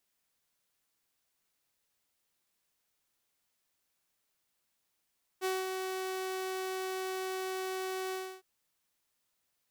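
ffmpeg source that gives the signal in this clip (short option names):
-f lavfi -i "aevalsrc='0.0447*(2*mod(376*t,1)-1)':d=3.01:s=44100,afade=t=in:d=0.039,afade=t=out:st=0.039:d=0.204:silence=0.562,afade=t=out:st=2.72:d=0.29"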